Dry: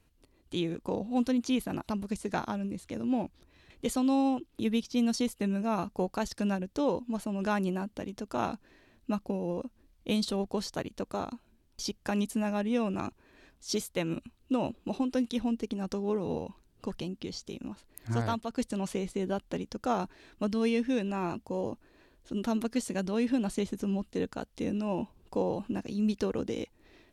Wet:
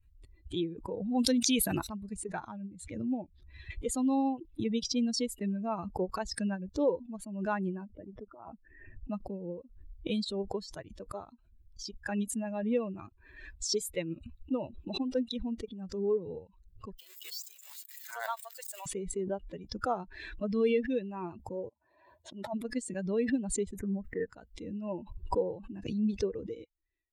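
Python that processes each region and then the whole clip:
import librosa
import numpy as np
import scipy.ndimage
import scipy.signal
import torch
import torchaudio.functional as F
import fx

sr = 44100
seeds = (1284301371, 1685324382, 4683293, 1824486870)

y = fx.chain(x, sr, fx.high_shelf(hz=2800.0, db=12.0),
    fx.notch(hz=7200.0, q=19.0),
    fx.env_flatten(amount_pct=70), at=(1.19, 1.87))
y = fx.chain(y, sr, fx.envelope_sharpen(power=1.5),
    fx.over_compress(threshold_db=-34.0, ratio=-0.5),
    fx.savgol(points=25), at=(7.86, 9.1))
y = fx.chain(y, sr, fx.crossing_spikes(level_db=-26.0),
    fx.highpass(hz=580.0, slope=24),
    fx.high_shelf(hz=9700.0, db=-8.5), at=(16.98, 18.86))
y = fx.chain(y, sr, fx.highpass(hz=81.0, slope=24),
    fx.band_shelf(hz=770.0, db=10.0, octaves=1.1),
    fx.auto_swell(attack_ms=181.0), at=(21.69, 22.54))
y = fx.chain(y, sr, fx.high_shelf_res(hz=2600.0, db=-12.0, q=3.0),
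    fx.quant_dither(seeds[0], bits=12, dither='none'), at=(23.79, 24.29))
y = fx.bin_expand(y, sr, power=2.0)
y = fx.dynamic_eq(y, sr, hz=460.0, q=2.5, threshold_db=-50.0, ratio=4.0, max_db=6)
y = fx.pre_swell(y, sr, db_per_s=59.0)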